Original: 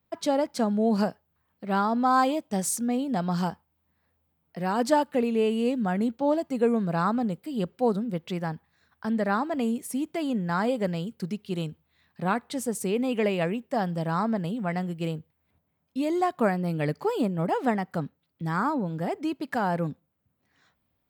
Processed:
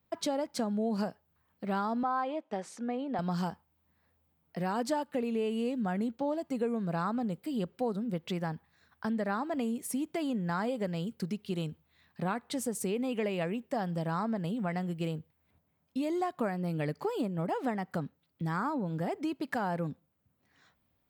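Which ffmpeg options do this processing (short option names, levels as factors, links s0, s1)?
-filter_complex "[0:a]asettb=1/sr,asplit=3[s0][s1][s2];[s0]atrim=end=2.034[s3];[s1]atrim=start=2.03:end=3.19,asetpts=PTS-STARTPTS,afade=t=in:d=0.004:c=qsin,afade=t=out:st=1.156:d=0.004:c=qsin,highpass=350,lowpass=2500[s4];[s2]atrim=start=3.186[s5];[s3][s4]acrossfade=d=0.004:c1=hsin:c2=qsin[s6];[s6][s5]acrossfade=d=0.004:c1=qsin:c2=hsin,acompressor=threshold=0.0282:ratio=3"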